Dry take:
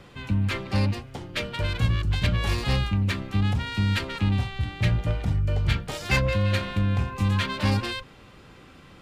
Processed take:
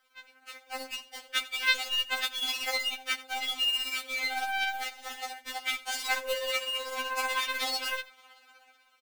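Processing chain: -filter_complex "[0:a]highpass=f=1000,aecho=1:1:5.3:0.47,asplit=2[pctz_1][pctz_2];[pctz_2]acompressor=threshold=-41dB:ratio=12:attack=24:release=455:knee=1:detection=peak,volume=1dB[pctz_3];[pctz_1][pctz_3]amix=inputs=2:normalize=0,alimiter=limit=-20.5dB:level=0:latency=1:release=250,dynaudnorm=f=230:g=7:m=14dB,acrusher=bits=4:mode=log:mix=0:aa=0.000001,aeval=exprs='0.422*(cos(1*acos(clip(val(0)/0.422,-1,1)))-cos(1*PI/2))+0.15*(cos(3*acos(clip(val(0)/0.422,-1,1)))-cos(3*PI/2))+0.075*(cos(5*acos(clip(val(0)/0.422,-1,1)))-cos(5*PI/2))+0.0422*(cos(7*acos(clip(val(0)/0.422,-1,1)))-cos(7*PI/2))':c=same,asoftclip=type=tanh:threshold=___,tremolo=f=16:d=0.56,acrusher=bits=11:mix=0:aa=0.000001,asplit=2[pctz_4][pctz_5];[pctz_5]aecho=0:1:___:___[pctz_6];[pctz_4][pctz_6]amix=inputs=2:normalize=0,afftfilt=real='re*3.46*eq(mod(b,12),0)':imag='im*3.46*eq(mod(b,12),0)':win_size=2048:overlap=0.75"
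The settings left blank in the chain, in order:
-12.5dB, 87, 0.119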